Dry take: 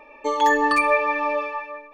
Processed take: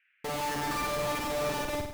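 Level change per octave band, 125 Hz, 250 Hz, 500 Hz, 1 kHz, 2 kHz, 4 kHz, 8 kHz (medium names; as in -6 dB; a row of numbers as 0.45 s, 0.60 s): no reading, -8.0 dB, -9.0 dB, -12.5 dB, -13.5 dB, -1.5 dB, +2.0 dB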